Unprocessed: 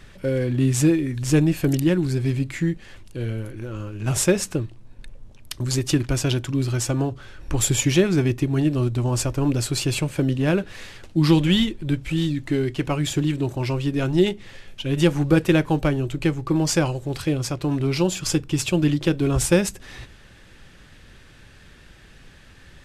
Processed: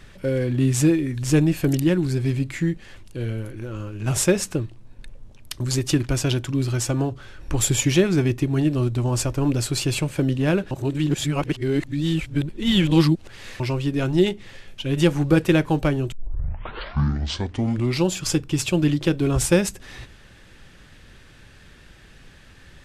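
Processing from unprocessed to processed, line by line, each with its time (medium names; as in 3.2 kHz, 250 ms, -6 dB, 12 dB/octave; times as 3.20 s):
10.71–13.60 s: reverse
16.12 s: tape start 1.93 s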